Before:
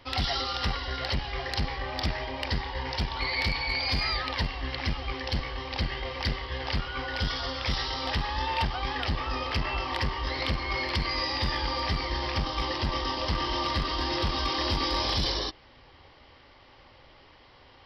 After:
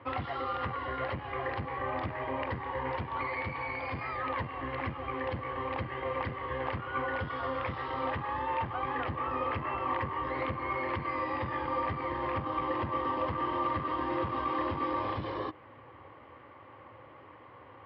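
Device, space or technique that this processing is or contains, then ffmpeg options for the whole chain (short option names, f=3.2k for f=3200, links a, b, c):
bass amplifier: -af "acompressor=threshold=-31dB:ratio=6,highpass=f=84:w=0.5412,highpass=f=84:w=1.3066,equalizer=f=110:t=q:w=4:g=6,equalizer=f=310:t=q:w=4:g=6,equalizer=f=510:t=q:w=4:g=6,equalizer=f=1.1k:t=q:w=4:g=9,lowpass=f=2.3k:w=0.5412,lowpass=f=2.3k:w=1.3066"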